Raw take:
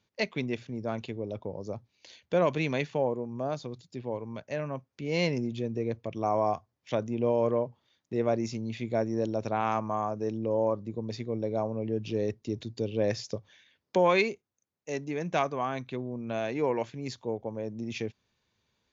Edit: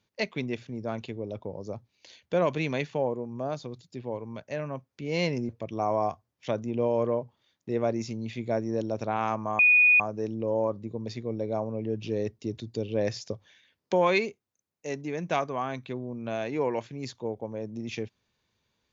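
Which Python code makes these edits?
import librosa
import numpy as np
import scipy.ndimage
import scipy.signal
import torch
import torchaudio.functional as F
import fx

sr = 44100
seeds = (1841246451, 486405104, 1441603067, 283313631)

y = fx.edit(x, sr, fx.cut(start_s=5.49, length_s=0.44),
    fx.insert_tone(at_s=10.03, length_s=0.41, hz=2470.0, db=-15.5), tone=tone)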